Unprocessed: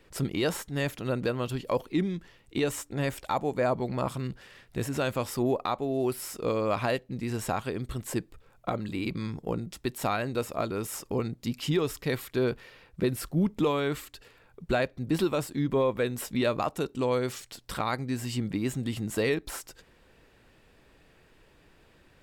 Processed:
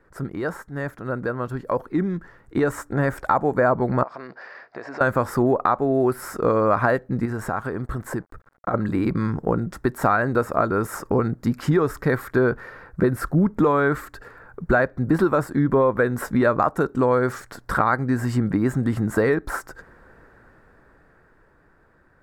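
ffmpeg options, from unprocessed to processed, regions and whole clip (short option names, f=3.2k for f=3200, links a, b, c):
-filter_complex "[0:a]asettb=1/sr,asplit=3[a][b][c];[a]atrim=end=4.034[d];[b]atrim=start=4.03:end=5.01,asetpts=PTS-STARTPTS,afade=t=in:d=0.004:c=qsin,afade=t=out:st=0.976:d=0.004:c=qsin,highpass=500,equalizer=f=670:t=q:w=4:g=7,equalizer=f=1.4k:t=q:w=4:g=-5,equalizer=f=2.4k:t=q:w=4:g=4,equalizer=f=3.4k:t=q:w=4:g=-4,equalizer=f=4.8k:t=q:w=4:g=9,lowpass=f=5k:w=0.5412,lowpass=f=5k:w=1.3066,acompressor=threshold=-43dB:ratio=4:attack=3.2:release=140:knee=1:detection=peak[e];[c]atrim=start=5.006[f];[d][e]acrossfade=d=0.004:c1=hsin:c2=qsin[g];[g][f]acrossfade=d=0.004:c1=qsin:c2=hsin,asettb=1/sr,asplit=3[h][i][j];[h]atrim=end=7.254[k];[i]atrim=start=7.25:end=8.74,asetpts=PTS-STARTPTS,afade=t=in:d=0.004:c=qsin,afade=t=out:st=1.486:d=0.004:c=qsin,aeval=exprs='sgn(val(0))*max(abs(val(0))-0.00178,0)':c=same,acompressor=threshold=-36dB:ratio=3:attack=3.2:release=140:knee=1:detection=peak[l];[j]atrim=start=8.736[m];[k][l]acrossfade=d=0.004:c1=hsin:c2=qsin[n];[n][m]acrossfade=d=0.004:c1=qsin:c2=hsin,dynaudnorm=f=220:g=21:m=11.5dB,highshelf=f=2.1k:t=q:w=3:g=-11,acompressor=threshold=-18dB:ratio=2"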